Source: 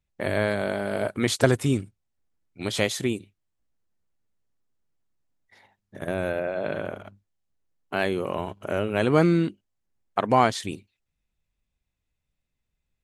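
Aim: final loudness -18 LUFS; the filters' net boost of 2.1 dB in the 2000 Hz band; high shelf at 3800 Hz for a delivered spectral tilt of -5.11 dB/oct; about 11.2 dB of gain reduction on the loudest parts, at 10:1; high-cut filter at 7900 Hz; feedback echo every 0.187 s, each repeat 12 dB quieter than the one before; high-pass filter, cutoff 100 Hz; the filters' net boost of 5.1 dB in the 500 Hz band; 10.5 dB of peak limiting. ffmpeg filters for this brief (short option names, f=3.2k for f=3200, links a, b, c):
-af "highpass=100,lowpass=7.9k,equalizer=f=500:t=o:g=6.5,equalizer=f=2k:t=o:g=4.5,highshelf=f=3.8k:g=-9,acompressor=threshold=-20dB:ratio=10,alimiter=limit=-16.5dB:level=0:latency=1,aecho=1:1:187|374|561:0.251|0.0628|0.0157,volume=11.5dB"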